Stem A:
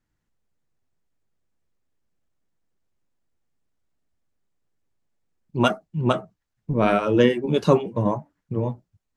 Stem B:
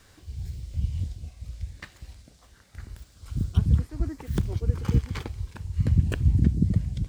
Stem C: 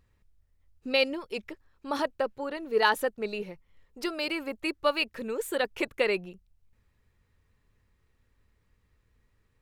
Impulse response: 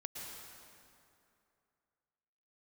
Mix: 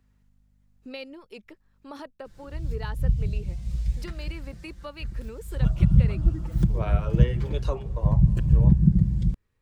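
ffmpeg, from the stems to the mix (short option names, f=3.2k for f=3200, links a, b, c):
-filter_complex "[0:a]highpass=f=460:w=0.5412,highpass=f=460:w=1.3066,aeval=exprs='val(0)+0.000631*(sin(2*PI*50*n/s)+sin(2*PI*2*50*n/s)/2+sin(2*PI*3*50*n/s)/3+sin(2*PI*4*50*n/s)/4+sin(2*PI*5*50*n/s)/5)':c=same,volume=1.5dB,asplit=2[a][b];[b]volume=-20.5dB[c];[1:a]lowshelf=f=170:g=11.5,aecho=1:1:5.8:0.82,dynaudnorm=f=270:g=9:m=5.5dB,adelay=2250,volume=-5.5dB,asplit=2[d][e];[e]volume=-4dB[f];[2:a]volume=-4dB,asplit=2[g][h];[h]apad=whole_len=404146[i];[a][i]sidechaincompress=threshold=-50dB:ratio=8:attack=16:release=342[j];[3:a]atrim=start_sample=2205[k];[c][f]amix=inputs=2:normalize=0[l];[l][k]afir=irnorm=-1:irlink=0[m];[j][d][g][m]amix=inputs=4:normalize=0,acrossover=split=240[n][o];[o]acompressor=threshold=-45dB:ratio=2[p];[n][p]amix=inputs=2:normalize=0"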